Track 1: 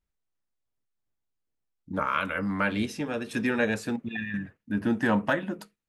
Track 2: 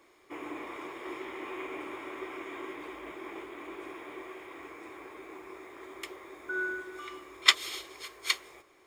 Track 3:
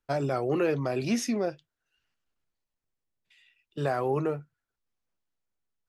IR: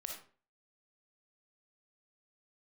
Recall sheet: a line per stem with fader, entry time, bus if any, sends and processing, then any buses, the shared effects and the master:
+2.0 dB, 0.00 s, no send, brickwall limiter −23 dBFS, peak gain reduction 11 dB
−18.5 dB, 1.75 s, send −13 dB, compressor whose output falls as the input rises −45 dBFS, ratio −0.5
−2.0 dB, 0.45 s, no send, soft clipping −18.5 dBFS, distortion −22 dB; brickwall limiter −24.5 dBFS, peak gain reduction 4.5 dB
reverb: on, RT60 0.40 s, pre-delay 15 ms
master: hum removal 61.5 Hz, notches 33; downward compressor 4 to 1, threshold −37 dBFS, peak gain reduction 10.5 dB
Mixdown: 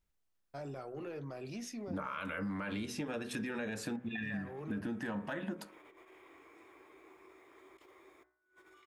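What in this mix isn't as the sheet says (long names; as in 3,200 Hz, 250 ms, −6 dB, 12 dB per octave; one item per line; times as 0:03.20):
stem 2: send −13 dB → −19 dB
stem 3 −2.0 dB → −12.0 dB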